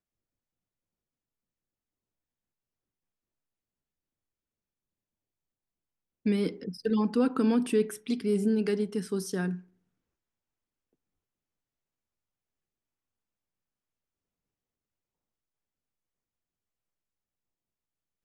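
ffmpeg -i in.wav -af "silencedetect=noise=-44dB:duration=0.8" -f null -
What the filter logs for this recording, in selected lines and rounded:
silence_start: 0.00
silence_end: 6.26 | silence_duration: 6.26
silence_start: 9.60
silence_end: 18.24 | silence_duration: 8.64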